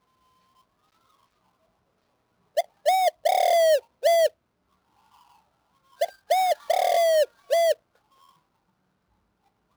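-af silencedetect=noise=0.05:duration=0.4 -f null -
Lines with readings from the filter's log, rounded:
silence_start: 0.00
silence_end: 2.57 | silence_duration: 2.57
silence_start: 4.27
silence_end: 6.01 | silence_duration: 1.75
silence_start: 7.72
silence_end: 9.76 | silence_duration: 2.04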